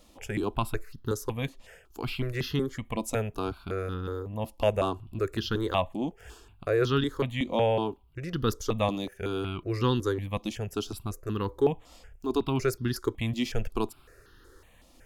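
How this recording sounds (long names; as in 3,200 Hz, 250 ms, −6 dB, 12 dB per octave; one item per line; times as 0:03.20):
notches that jump at a steady rate 5.4 Hz 420–2,300 Hz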